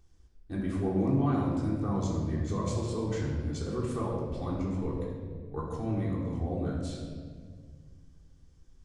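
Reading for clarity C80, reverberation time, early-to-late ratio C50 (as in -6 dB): 3.0 dB, 1.8 s, 1.0 dB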